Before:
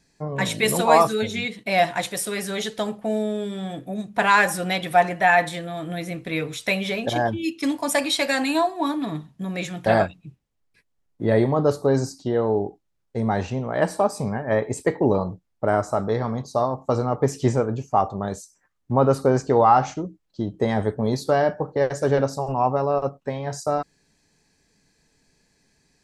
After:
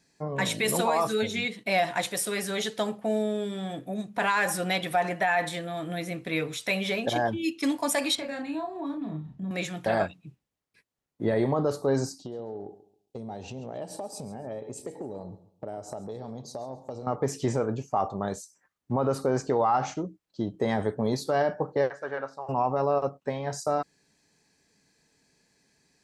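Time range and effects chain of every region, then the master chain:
0:08.15–0:09.51: RIAA equalisation playback + downward compressor 3 to 1, threshold −34 dBFS + double-tracking delay 32 ms −4 dB
0:12.18–0:17.07: flat-topped bell 1,500 Hz −12 dB 1.3 octaves + downward compressor, threshold −31 dBFS + repeating echo 136 ms, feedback 27%, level −16 dB
0:21.90–0:22.49: resonant band-pass 1,500 Hz, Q 1.6 + spectral tilt −1.5 dB per octave
whole clip: high-pass filter 140 Hz 6 dB per octave; brickwall limiter −13.5 dBFS; level −2 dB

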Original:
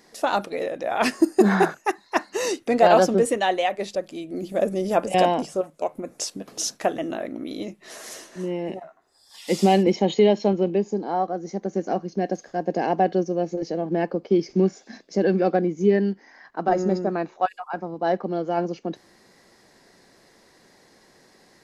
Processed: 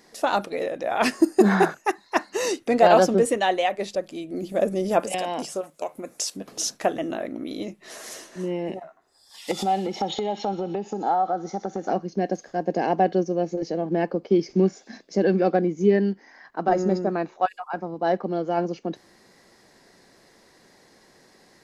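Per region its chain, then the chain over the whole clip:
0:05.00–0:06.37: spectral tilt +2 dB per octave + downward compressor 12 to 1, threshold −22 dBFS
0:09.51–0:11.90: delay with a high-pass on its return 61 ms, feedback 62%, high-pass 3,000 Hz, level −7 dB + downward compressor 8 to 1, threshold −25 dBFS + hollow resonant body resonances 810/1,300/3,500 Hz, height 15 dB, ringing for 25 ms
whole clip: no processing

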